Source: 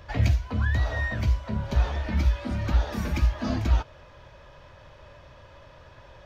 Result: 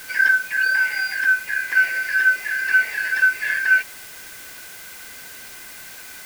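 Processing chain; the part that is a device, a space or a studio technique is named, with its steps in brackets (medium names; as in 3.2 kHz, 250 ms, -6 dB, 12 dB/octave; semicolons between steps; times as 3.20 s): split-band scrambled radio (four frequency bands reordered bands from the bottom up 3142; band-pass 380–3300 Hz; white noise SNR 18 dB); trim +4.5 dB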